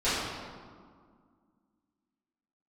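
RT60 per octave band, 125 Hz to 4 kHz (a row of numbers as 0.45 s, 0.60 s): 2.1 s, 2.8 s, 1.9 s, 1.9 s, 1.3 s, 1.1 s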